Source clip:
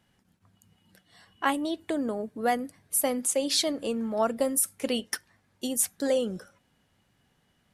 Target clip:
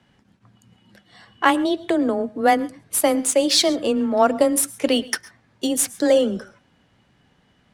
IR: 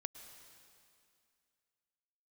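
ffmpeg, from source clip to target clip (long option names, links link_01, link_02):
-filter_complex "[0:a]afreqshift=15,adynamicsmooth=sensitivity=7.5:basefreq=6300,asplit=2[link_01][link_02];[1:a]atrim=start_sample=2205,afade=type=out:start_time=0.19:duration=0.01,atrim=end_sample=8820[link_03];[link_02][link_03]afir=irnorm=-1:irlink=0,volume=6dB[link_04];[link_01][link_04]amix=inputs=2:normalize=0,volume=2dB"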